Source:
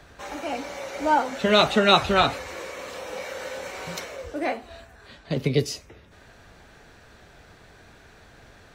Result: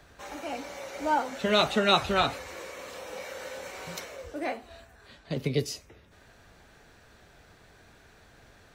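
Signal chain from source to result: high shelf 8700 Hz +5.5 dB; gain -5.5 dB

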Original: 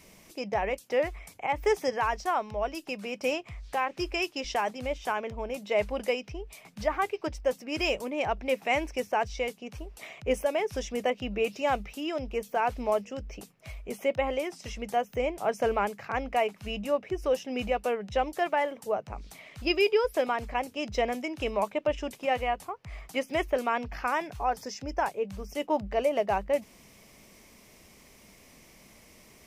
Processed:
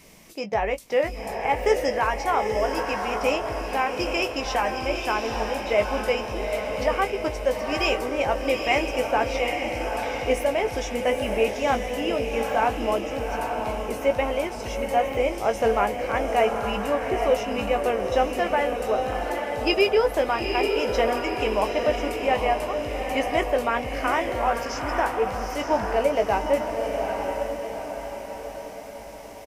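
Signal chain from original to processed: doubler 18 ms -8 dB; on a send: diffused feedback echo 0.848 s, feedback 51%, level -4 dB; on the sum: gain +3.5 dB

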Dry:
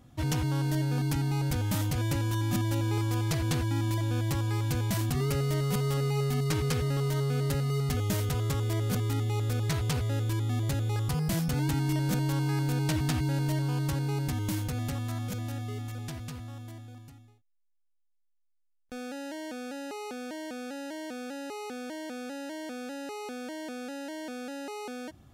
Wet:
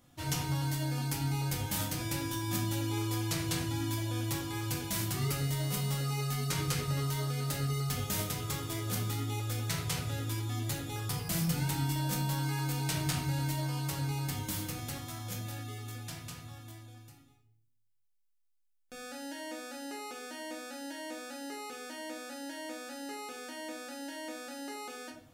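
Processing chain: tilt +2 dB/oct; shoebox room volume 81 m³, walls mixed, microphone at 0.85 m; gain -6 dB

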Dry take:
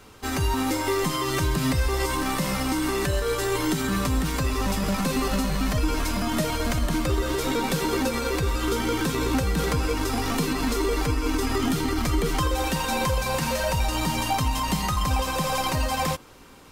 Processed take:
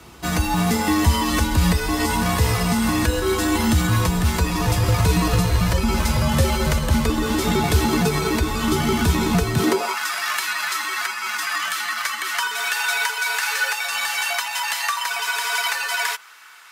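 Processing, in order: frequency shift -84 Hz; high-pass sweep 67 Hz -> 1500 Hz, 9.46–9.99; gain +5 dB

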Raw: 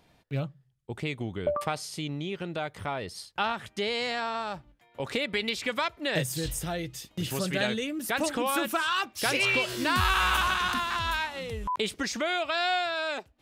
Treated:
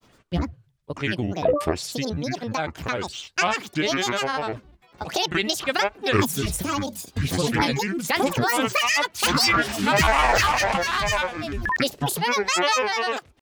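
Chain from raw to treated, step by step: grains, spray 27 ms, pitch spread up and down by 12 st; gain +7.5 dB

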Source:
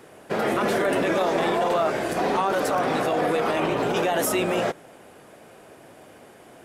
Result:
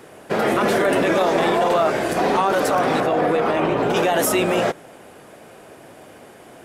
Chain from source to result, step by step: 3–3.9 high shelf 3500 Hz -10 dB; gain +4.5 dB

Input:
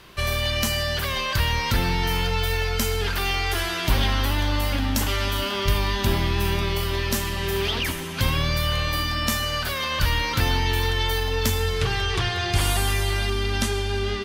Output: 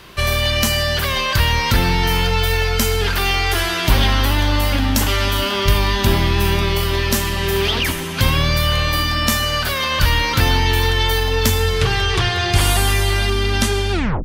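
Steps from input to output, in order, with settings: tape stop at the end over 0.32 s; added harmonics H 2 -32 dB, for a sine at -7.5 dBFS; gain +6.5 dB

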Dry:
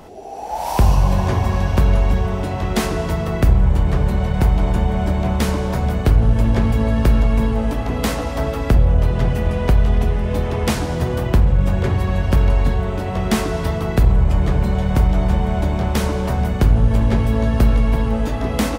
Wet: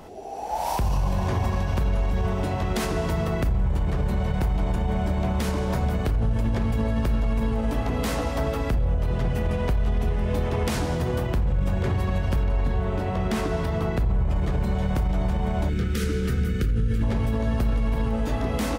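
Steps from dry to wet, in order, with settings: 12.43–14.36 high shelf 4200 Hz -6.5 dB; 15.69–17.03 spectral gain 530–1200 Hz -21 dB; limiter -13 dBFS, peak gain reduction 10 dB; gain -3 dB

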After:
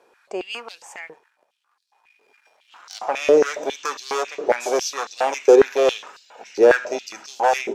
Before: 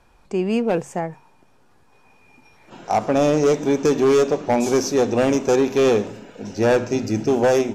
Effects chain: 1.07–3 half-wave gain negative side -12 dB; stepped high-pass 7.3 Hz 430–4300 Hz; gain -2 dB

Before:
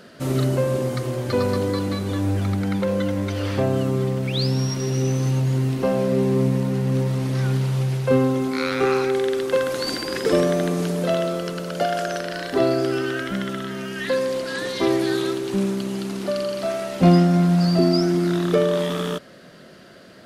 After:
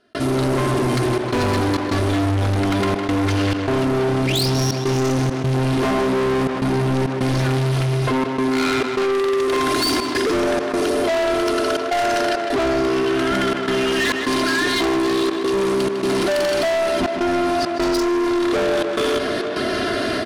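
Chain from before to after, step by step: steep low-pass 11000 Hz; bell 7300 Hz -8 dB 0.41 oct; comb 2.9 ms, depth 98%; AGC gain up to 11.5 dB; in parallel at -5 dB: hard clip -14 dBFS, distortion -9 dB; on the sum: step gate ".xxxxxxx.xxx" 102 bpm -60 dB; soft clip -17.5 dBFS, distortion -8 dB; on a send: tape echo 0.155 s, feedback 88%, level -14 dB, low-pass 4400 Hz; on the sum: fast leveller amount 70%; gain -1 dB

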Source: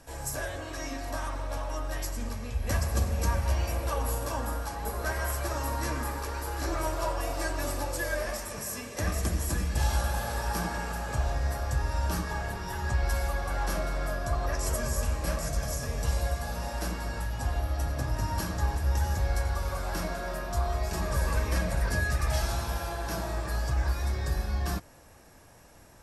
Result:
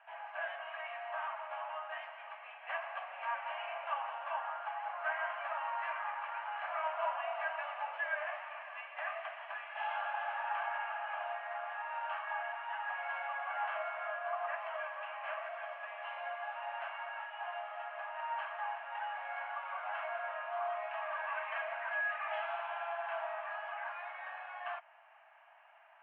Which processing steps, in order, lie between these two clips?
Chebyshev band-pass 650–3000 Hz, order 5; gain -1 dB

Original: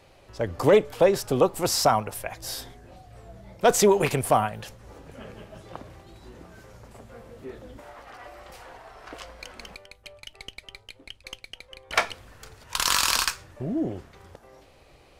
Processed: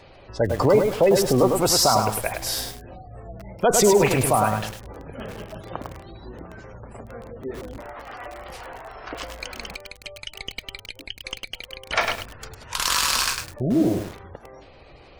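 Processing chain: spectral gate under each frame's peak -25 dB strong; limiter -16.5 dBFS, peak gain reduction 8.5 dB; lo-fi delay 0.103 s, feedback 35%, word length 7-bit, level -4 dB; gain +7 dB

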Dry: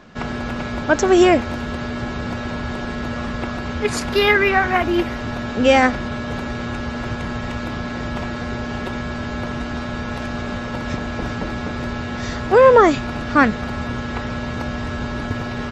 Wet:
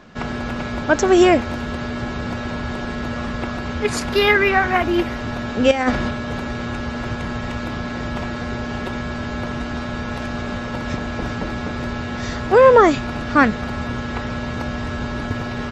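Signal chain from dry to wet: 5.71–6.11 negative-ratio compressor -17 dBFS, ratio -0.5

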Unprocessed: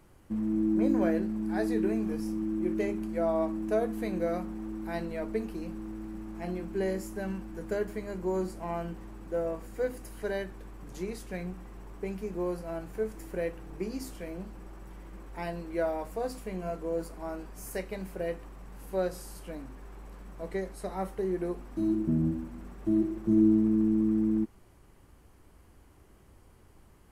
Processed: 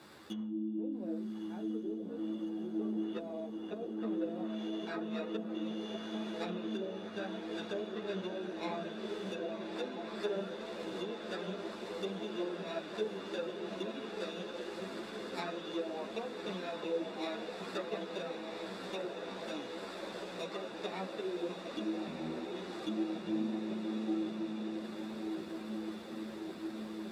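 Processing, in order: resonant high shelf 2400 Hz -9 dB, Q 3; sample-and-hold 14×; treble ducked by the level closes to 450 Hz, closed at -25.5 dBFS; compressor 3:1, threshold -47 dBFS, peak gain reduction 20 dB; HPF 230 Hz 12 dB/oct; bell 3600 Hz +10 dB 0.37 oct; diffused feedback echo 1.246 s, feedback 79%, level -5 dB; ensemble effect; gain +9.5 dB

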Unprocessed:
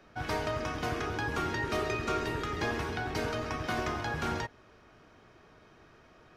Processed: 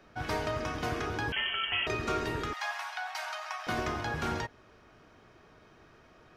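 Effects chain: 1.32–1.87 inverted band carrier 3200 Hz; 2.53–3.67 steep high-pass 670 Hz 72 dB/oct

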